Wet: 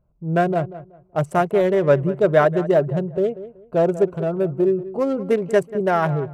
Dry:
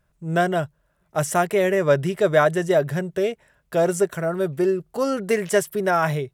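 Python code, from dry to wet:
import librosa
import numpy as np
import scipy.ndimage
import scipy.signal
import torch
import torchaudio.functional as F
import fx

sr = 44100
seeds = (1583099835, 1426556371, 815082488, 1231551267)

p1 = fx.wiener(x, sr, points=25)
p2 = fx.high_shelf(p1, sr, hz=2400.0, db=-10.0)
p3 = p2 + fx.echo_filtered(p2, sr, ms=188, feedback_pct=25, hz=2000.0, wet_db=-14.5, dry=0)
y = p3 * 10.0 ** (3.0 / 20.0)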